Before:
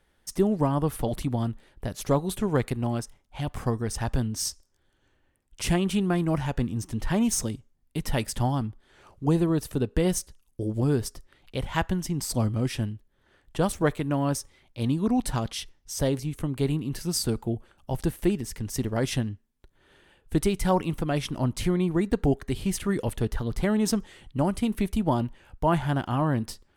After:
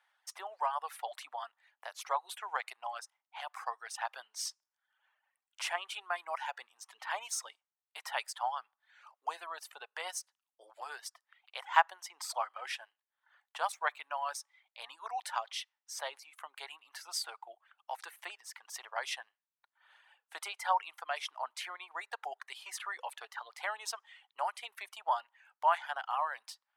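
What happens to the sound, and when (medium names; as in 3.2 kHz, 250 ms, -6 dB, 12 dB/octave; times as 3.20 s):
11.76–12.76 s: peaking EQ 990 Hz +5.5 dB 2 oct
whole clip: low-pass 2.3 kHz 6 dB/octave; reverb removal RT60 0.99 s; steep high-pass 770 Hz 36 dB/octave; trim +1 dB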